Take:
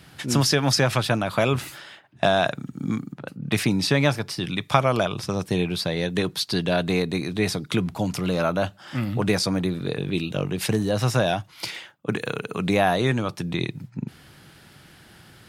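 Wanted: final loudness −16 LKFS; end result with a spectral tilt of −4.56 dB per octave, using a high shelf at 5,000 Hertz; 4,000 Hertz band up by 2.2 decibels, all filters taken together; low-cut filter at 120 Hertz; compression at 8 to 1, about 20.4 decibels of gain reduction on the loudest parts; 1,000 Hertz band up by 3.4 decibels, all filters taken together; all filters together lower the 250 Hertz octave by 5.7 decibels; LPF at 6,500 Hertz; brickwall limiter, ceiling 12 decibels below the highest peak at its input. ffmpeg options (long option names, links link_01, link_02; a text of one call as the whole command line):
ffmpeg -i in.wav -af "highpass=120,lowpass=6500,equalizer=frequency=250:width_type=o:gain=-8,equalizer=frequency=1000:width_type=o:gain=5.5,equalizer=frequency=4000:width_type=o:gain=5.5,highshelf=frequency=5000:gain=-5,acompressor=threshold=-32dB:ratio=8,volume=21.5dB,alimiter=limit=-3.5dB:level=0:latency=1" out.wav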